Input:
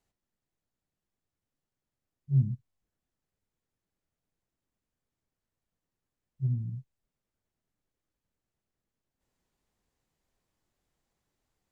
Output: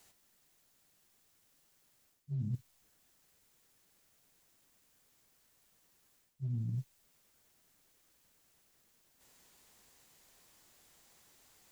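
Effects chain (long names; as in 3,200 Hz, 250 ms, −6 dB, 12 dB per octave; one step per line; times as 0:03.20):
spectral tilt +2.5 dB per octave
brickwall limiter −31 dBFS, peak gain reduction 8 dB
reversed playback
downward compressor 16 to 1, threshold −48 dBFS, peak gain reduction 15 dB
reversed playback
level +14.5 dB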